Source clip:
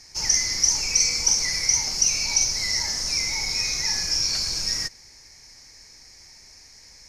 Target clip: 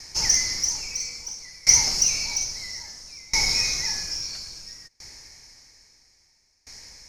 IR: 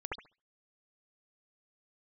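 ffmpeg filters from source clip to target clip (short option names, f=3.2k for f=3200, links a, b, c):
-af "acontrast=71,aeval=exprs='val(0)*pow(10,-27*if(lt(mod(0.6*n/s,1),2*abs(0.6)/1000),1-mod(0.6*n/s,1)/(2*abs(0.6)/1000),(mod(0.6*n/s,1)-2*abs(0.6)/1000)/(1-2*abs(0.6)/1000))/20)':c=same"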